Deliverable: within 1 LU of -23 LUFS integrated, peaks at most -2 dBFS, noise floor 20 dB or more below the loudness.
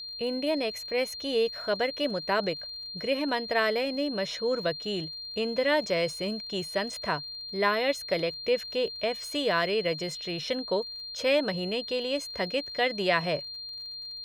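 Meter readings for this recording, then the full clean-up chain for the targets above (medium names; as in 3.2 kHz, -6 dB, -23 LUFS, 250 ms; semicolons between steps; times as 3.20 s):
tick rate 47 per s; steady tone 4.2 kHz; tone level -37 dBFS; loudness -29.0 LUFS; peak level -10.0 dBFS; loudness target -23.0 LUFS
-> de-click; band-stop 4.2 kHz, Q 30; trim +6 dB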